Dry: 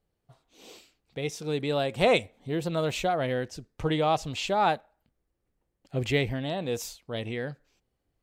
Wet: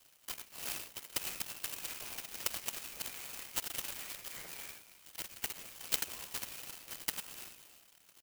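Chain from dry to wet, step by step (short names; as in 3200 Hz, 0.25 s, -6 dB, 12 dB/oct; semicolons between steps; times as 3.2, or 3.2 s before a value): Wiener smoothing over 25 samples; dynamic EQ 120 Hz, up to -5 dB, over -43 dBFS, Q 1.5; compressor 6:1, threshold -33 dBFS, peak gain reduction 14 dB; flipped gate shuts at -34 dBFS, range -26 dB; on a send: echo 91 ms -6.5 dB; on the sum: echoes that change speed 0.729 s, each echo +4 st, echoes 2; LPC vocoder at 8 kHz whisper; inverted band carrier 3100 Hz; clock jitter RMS 0.094 ms; gain +12.5 dB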